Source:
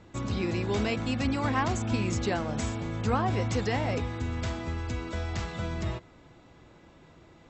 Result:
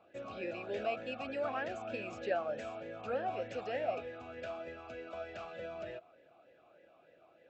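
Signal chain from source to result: talking filter a-e 3.3 Hz; trim +4.5 dB

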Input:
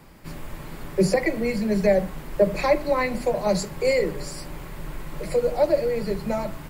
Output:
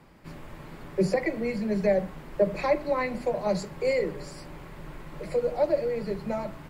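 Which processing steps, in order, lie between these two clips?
low-pass 3.5 kHz 6 dB/octave; bass shelf 62 Hz -7 dB; trim -4 dB

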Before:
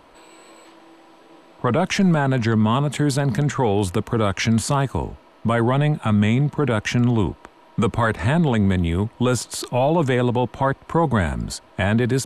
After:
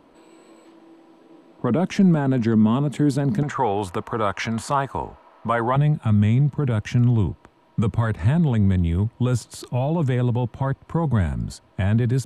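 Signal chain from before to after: peaking EQ 250 Hz +12 dB 2.1 oct, from 3.43 s 1 kHz, from 5.76 s 110 Hz; trim -9 dB

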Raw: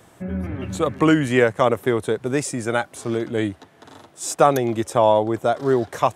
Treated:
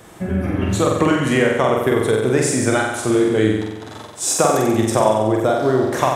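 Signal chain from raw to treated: compression, threshold -21 dBFS, peak gain reduction 11.5 dB; on a send: flutter echo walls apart 7.9 m, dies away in 1 s; on the sum: trim +6.5 dB

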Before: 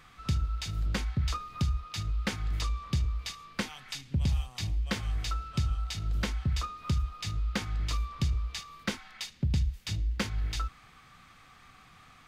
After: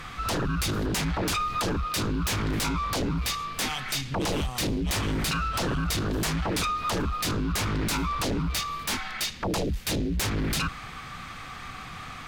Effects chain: treble shelf 6.5 kHz -4 dB; sine folder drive 19 dB, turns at -17.5 dBFS; trim -6.5 dB

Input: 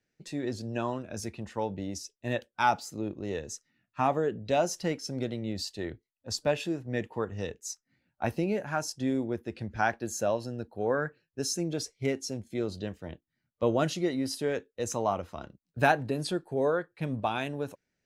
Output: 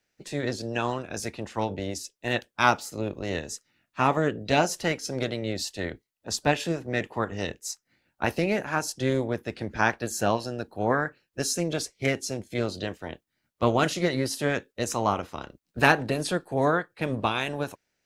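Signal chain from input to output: spectral peaks clipped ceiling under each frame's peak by 13 dB; loudspeaker Doppler distortion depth 0.15 ms; trim +4 dB

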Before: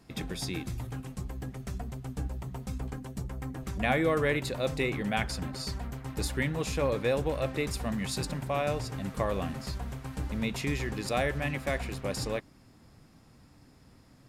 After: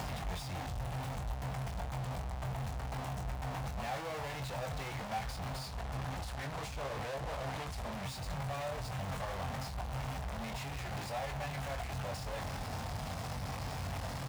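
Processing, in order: one-bit comparator; high-pass 40 Hz 24 dB/octave; peak limiter -30 dBFS, peak gain reduction 6.5 dB; treble shelf 2.1 kHz +7.5 dB; doubling 22 ms -7 dB; compression, threshold -31 dBFS, peak gain reduction 6.5 dB; FFT filter 100 Hz 0 dB, 340 Hz -16 dB, 740 Hz +1 dB, 1.3 kHz -7 dB, 14 kHz -22 dB; 5.66–8.03 s: loudspeaker Doppler distortion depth 0.53 ms; trim +3.5 dB

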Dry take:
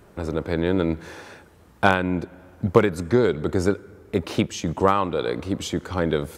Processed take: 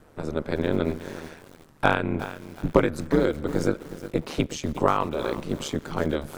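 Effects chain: ring modulator 74 Hz; bit-crushed delay 364 ms, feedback 35%, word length 6-bit, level -13 dB

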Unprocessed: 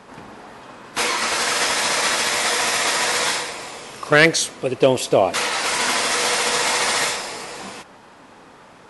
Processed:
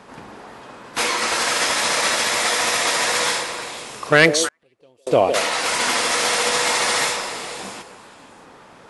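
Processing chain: repeats whose band climbs or falls 157 ms, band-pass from 460 Hz, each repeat 1.4 oct, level -6 dB; 4.48–5.07 s: inverted gate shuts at -19 dBFS, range -38 dB

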